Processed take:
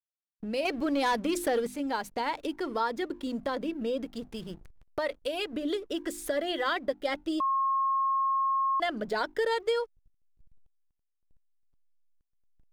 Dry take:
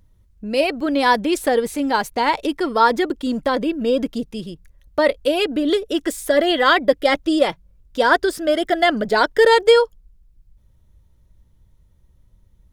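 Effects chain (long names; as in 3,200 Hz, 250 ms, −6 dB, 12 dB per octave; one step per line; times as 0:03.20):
0:00.65–0:01.67: leveller curve on the samples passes 2
mains-hum notches 50/100/150/200/250/300/350 Hz
0:04.04–0:05.53: dynamic equaliser 270 Hz, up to −6 dB, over −33 dBFS, Q 0.82
slack as between gear wheels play −39 dBFS
downward compressor 2 to 1, threshold −37 dBFS, peak gain reduction 16 dB
0:07.40–0:08.80: beep over 1,080 Hz −23 dBFS
level −1 dB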